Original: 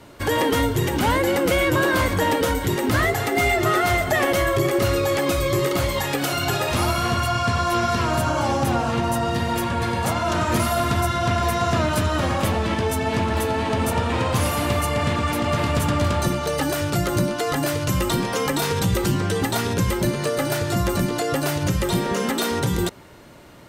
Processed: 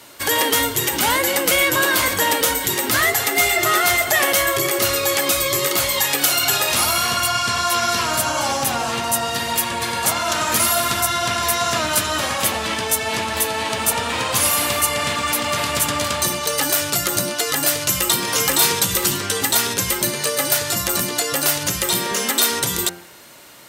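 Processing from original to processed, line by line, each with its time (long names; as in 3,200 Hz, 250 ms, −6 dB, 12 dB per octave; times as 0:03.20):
0:17.76–0:18.24: delay throw 510 ms, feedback 45%, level −5 dB
whole clip: spectral tilt +3.5 dB per octave; hum removal 87.35 Hz, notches 34; level +2 dB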